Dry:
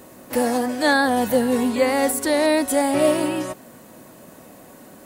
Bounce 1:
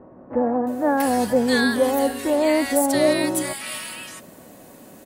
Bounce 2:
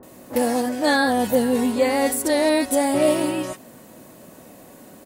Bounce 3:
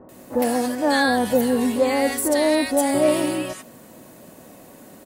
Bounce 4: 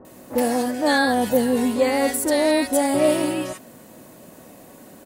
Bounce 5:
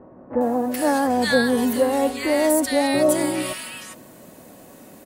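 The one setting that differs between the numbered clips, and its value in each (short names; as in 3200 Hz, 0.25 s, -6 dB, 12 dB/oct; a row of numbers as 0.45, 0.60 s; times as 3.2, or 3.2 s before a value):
bands offset in time, time: 670, 30, 90, 50, 410 ms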